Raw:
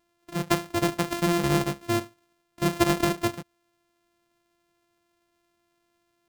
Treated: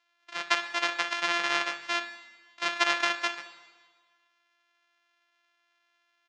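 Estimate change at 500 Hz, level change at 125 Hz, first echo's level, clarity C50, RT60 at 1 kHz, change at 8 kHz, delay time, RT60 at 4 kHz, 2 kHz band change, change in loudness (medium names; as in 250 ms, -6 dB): -10.5 dB, under -30 dB, -16.0 dB, 11.0 dB, 1.5 s, -5.0 dB, 61 ms, 1.4 s, +6.0 dB, -2.0 dB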